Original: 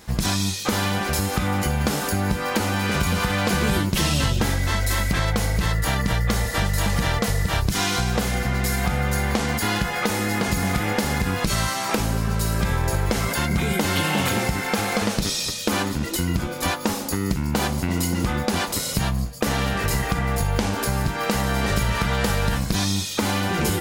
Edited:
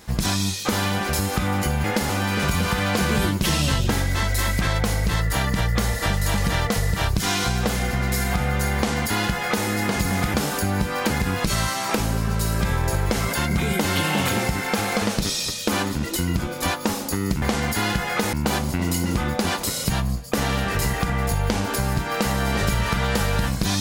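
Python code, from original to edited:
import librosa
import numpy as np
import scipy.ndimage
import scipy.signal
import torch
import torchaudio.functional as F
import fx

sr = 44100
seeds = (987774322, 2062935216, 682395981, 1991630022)

y = fx.edit(x, sr, fx.swap(start_s=1.84, length_s=0.77, other_s=10.86, other_length_s=0.25),
    fx.duplicate(start_s=9.28, length_s=0.91, to_s=17.42), tone=tone)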